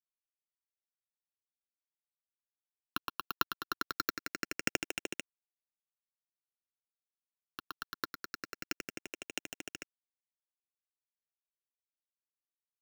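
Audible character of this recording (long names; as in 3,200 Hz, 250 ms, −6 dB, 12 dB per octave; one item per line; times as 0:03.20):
a buzz of ramps at a fixed pitch in blocks of 32 samples
chopped level 1.5 Hz, depth 60%, duty 15%
a quantiser's noise floor 10 bits, dither none
phaser sweep stages 6, 0.24 Hz, lowest notch 560–1,200 Hz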